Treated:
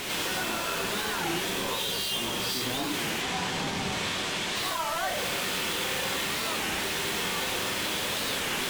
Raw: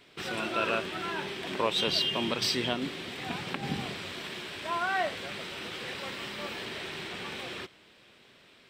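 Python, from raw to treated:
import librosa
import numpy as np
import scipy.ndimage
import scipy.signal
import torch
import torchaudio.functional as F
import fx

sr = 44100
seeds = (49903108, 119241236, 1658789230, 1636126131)

y = np.sign(x) * np.sqrt(np.mean(np.square(x)))
y = fx.lowpass(y, sr, hz=8100.0, slope=24, at=(3.11, 4.56))
y = fx.fold_sine(y, sr, drive_db=3, ceiling_db=-27.5)
y = fx.rev_gated(y, sr, seeds[0], gate_ms=130, shape='rising', drr_db=-4.0)
y = fx.record_warp(y, sr, rpm=33.33, depth_cents=250.0)
y = F.gain(torch.from_numpy(y), -6.5).numpy()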